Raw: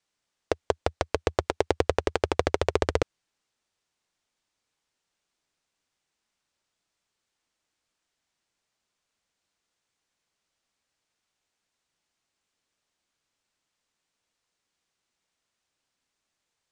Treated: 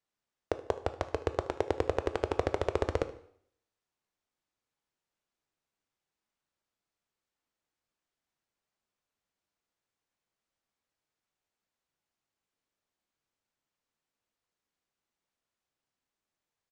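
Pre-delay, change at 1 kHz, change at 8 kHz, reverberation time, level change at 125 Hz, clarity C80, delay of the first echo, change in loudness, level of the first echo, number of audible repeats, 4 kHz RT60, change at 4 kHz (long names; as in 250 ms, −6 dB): 6 ms, −6.0 dB, −11.5 dB, 0.65 s, −5.0 dB, 18.0 dB, 75 ms, −5.5 dB, −19.0 dB, 1, 0.60 s, −10.5 dB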